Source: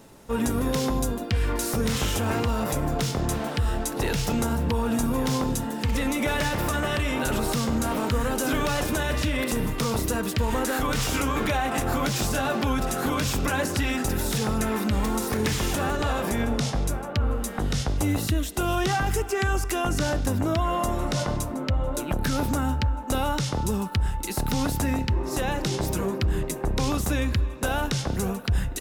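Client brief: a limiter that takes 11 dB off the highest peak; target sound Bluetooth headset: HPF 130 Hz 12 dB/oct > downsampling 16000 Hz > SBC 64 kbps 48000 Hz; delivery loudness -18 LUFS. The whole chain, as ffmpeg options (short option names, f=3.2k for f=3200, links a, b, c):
-af "alimiter=level_in=2dB:limit=-24dB:level=0:latency=1,volume=-2dB,highpass=130,aresample=16000,aresample=44100,volume=18dB" -ar 48000 -c:a sbc -b:a 64k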